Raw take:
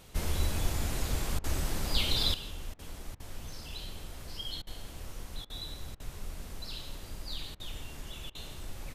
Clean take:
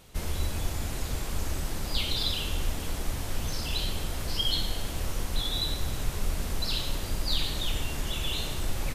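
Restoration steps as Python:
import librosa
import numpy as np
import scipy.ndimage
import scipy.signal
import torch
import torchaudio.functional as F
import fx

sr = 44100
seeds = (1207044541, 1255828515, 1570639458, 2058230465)

y = fx.fix_interpolate(x, sr, at_s=(1.39, 2.74, 3.15, 4.62, 5.45, 5.95, 7.55, 8.3), length_ms=48.0)
y = fx.fix_echo_inverse(y, sr, delay_ms=164, level_db=-19.0)
y = fx.gain(y, sr, db=fx.steps((0.0, 0.0), (2.34, 11.5)))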